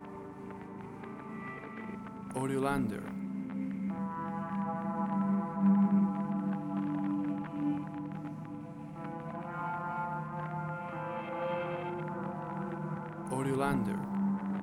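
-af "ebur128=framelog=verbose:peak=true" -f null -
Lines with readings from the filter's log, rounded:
Integrated loudness:
  I:         -35.3 LUFS
  Threshold: -45.4 LUFS
Loudness range:
  LRA:         6.7 LU
  Threshold: -55.2 LUFS
  LRA low:   -38.6 LUFS
  LRA high:  -31.8 LUFS
True peak:
  Peak:      -18.1 dBFS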